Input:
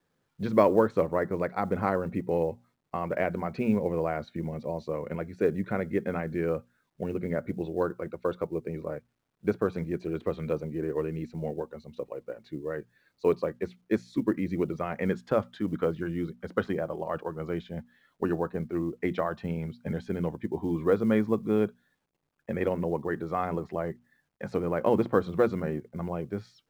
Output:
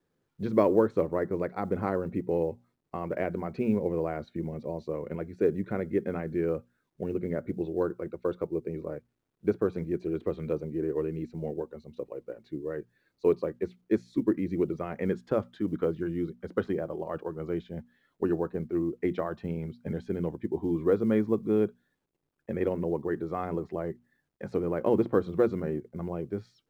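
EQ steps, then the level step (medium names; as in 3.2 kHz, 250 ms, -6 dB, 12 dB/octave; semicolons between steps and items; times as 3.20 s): bass shelf 150 Hz +6 dB; peaking EQ 360 Hz +7 dB 0.95 oct; -5.5 dB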